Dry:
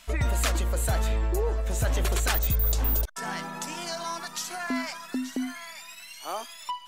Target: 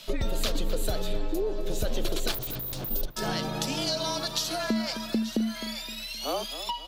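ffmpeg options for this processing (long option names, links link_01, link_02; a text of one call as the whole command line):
ffmpeg -i in.wav -filter_complex "[0:a]equalizer=frequency=125:width_type=o:width=1:gain=-7,equalizer=frequency=250:width_type=o:width=1:gain=3,equalizer=frequency=500:width_type=o:width=1:gain=4,equalizer=frequency=1000:width_type=o:width=1:gain=-7,equalizer=frequency=2000:width_type=o:width=1:gain=-9,equalizer=frequency=4000:width_type=o:width=1:gain=8,equalizer=frequency=8000:width_type=o:width=1:gain=-9,acompressor=threshold=-32dB:ratio=5,asplit=3[link_01][link_02][link_03];[link_01]afade=type=out:start_time=2.31:duration=0.02[link_04];[link_02]aeval=exprs='0.015*(abs(mod(val(0)/0.015+3,4)-2)-1)':channel_layout=same,afade=type=in:start_time=2.31:duration=0.02,afade=type=out:start_time=2.89:duration=0.02[link_05];[link_03]afade=type=in:start_time=2.89:duration=0.02[link_06];[link_04][link_05][link_06]amix=inputs=3:normalize=0,afreqshift=-34,asplit=2[link_07][link_08];[link_08]adelay=260,lowpass=frequency=4000:poles=1,volume=-12dB,asplit=2[link_09][link_10];[link_10]adelay=260,lowpass=frequency=4000:poles=1,volume=0.37,asplit=2[link_11][link_12];[link_12]adelay=260,lowpass=frequency=4000:poles=1,volume=0.37,asplit=2[link_13][link_14];[link_14]adelay=260,lowpass=frequency=4000:poles=1,volume=0.37[link_15];[link_07][link_09][link_11][link_13][link_15]amix=inputs=5:normalize=0,volume=7.5dB" out.wav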